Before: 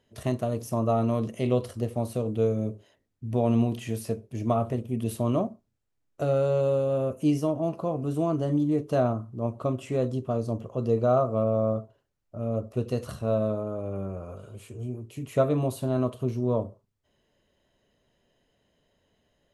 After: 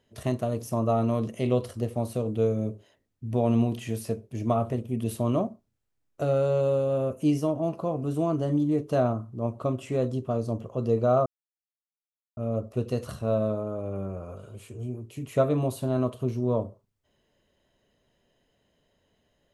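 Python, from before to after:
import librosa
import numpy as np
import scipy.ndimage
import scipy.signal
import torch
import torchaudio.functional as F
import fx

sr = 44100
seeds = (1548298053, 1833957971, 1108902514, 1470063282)

y = fx.edit(x, sr, fx.silence(start_s=11.26, length_s=1.11), tone=tone)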